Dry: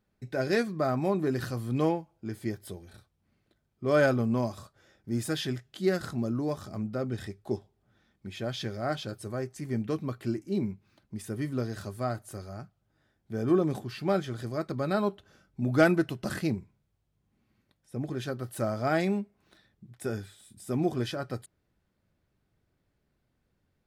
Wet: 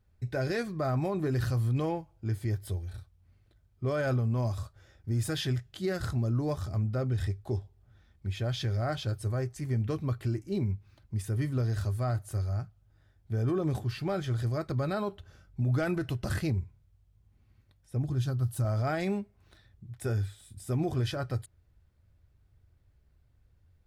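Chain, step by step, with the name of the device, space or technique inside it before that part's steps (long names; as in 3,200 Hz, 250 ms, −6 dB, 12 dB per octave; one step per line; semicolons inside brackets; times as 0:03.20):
0:18.02–0:18.65: octave-band graphic EQ 125/500/2,000 Hz +4/−8/−10 dB
car stereo with a boomy subwoofer (low shelf with overshoot 130 Hz +13 dB, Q 1.5; brickwall limiter −21.5 dBFS, peak gain reduction 11 dB)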